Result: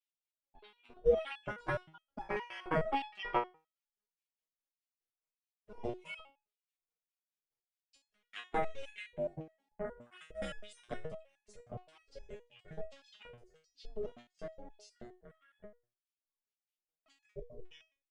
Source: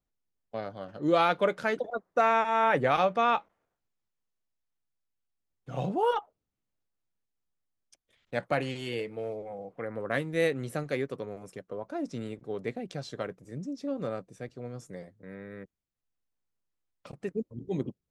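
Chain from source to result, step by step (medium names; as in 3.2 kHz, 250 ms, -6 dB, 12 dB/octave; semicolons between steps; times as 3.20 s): tremolo saw down 4.8 Hz, depth 90%; LFO high-pass square 1.7 Hz 250–3100 Hz; ring modulator 260 Hz; pitch shift -3 st; resonator arpeggio 9.6 Hz 120–840 Hz; trim +10 dB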